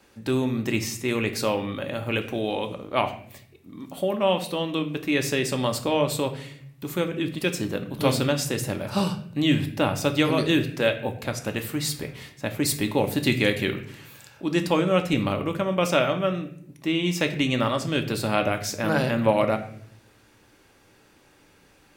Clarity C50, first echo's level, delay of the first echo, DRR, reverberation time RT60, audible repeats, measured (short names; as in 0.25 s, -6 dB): 12.0 dB, none, none, 5.5 dB, 0.60 s, none